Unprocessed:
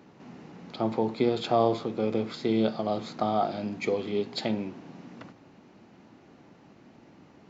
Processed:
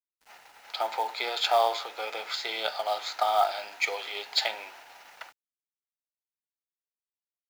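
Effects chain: gate -45 dBFS, range -17 dB; high-pass 820 Hz 24 dB/octave; band-stop 1.1 kHz, Q 5.1; companded quantiser 6-bit; trim +9 dB

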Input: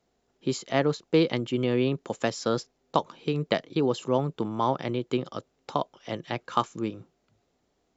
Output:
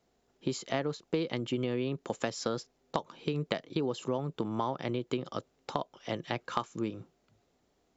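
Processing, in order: compression 6:1, threshold -28 dBFS, peak gain reduction 11.5 dB

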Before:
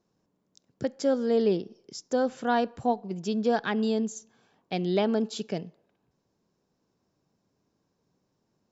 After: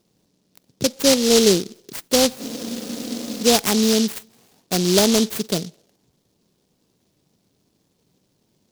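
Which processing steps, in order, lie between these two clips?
spectral freeze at 2.42 s, 1.01 s; delay time shaken by noise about 4.6 kHz, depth 0.2 ms; trim +9 dB

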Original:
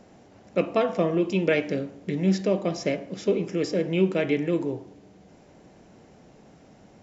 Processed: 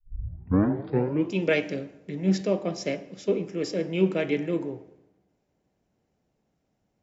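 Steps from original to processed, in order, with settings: tape start-up on the opening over 1.32 s; algorithmic reverb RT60 1.8 s, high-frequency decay 0.5×, pre-delay 85 ms, DRR 18 dB; three bands expanded up and down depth 70%; trim -2.5 dB

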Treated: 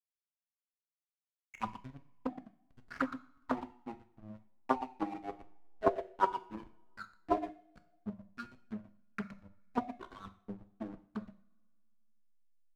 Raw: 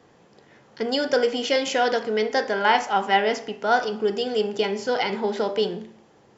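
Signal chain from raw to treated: expander on every frequency bin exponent 2; compression 10:1, threshold -25 dBFS, peak gain reduction 10 dB; peaking EQ 3.3 kHz -12.5 dB 0.44 oct; low-pass that closes with the level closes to 300 Hz, closed at -25.5 dBFS; transient shaper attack +5 dB, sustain -11 dB; speed mistake 15 ips tape played at 7.5 ips; auto-wah 690–2300 Hz, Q 4.5, down, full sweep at -23.5 dBFS; tilt shelf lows -8 dB, about 930 Hz; delay 118 ms -10 dB; hysteresis with a dead band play -54.5 dBFS; two-slope reverb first 0.47 s, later 2.1 s, from -25 dB, DRR 9 dB; loudspeaker Doppler distortion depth 0.5 ms; trim +17.5 dB

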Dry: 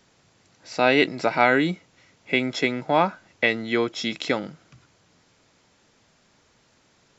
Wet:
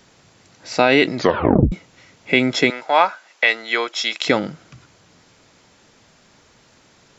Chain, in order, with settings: 1.16 s: tape stop 0.56 s; 2.70–4.26 s: high-pass 730 Hz 12 dB/octave; peak limiter -10.5 dBFS, peak gain reduction 7 dB; trim +8 dB

